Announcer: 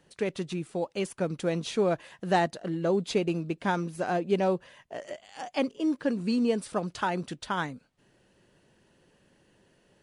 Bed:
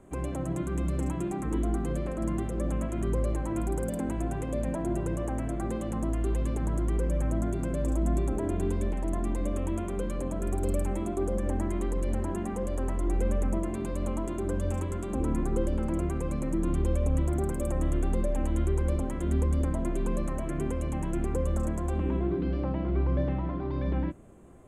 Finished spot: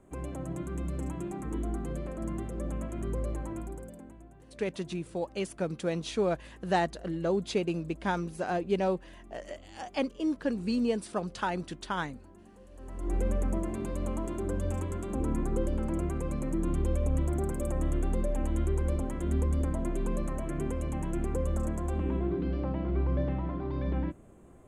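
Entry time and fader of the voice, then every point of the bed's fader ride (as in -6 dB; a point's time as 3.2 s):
4.40 s, -2.5 dB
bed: 3.45 s -5 dB
4.3 s -22.5 dB
12.68 s -22.5 dB
13.14 s -2 dB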